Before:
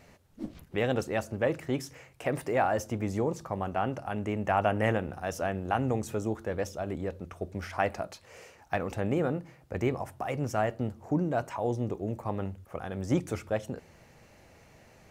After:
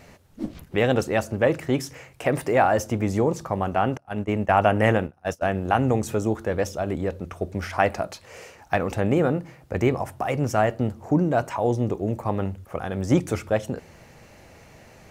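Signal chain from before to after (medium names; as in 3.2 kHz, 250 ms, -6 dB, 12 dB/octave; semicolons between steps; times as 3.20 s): 3.97–5.55 s: gate -32 dBFS, range -27 dB; trim +7.5 dB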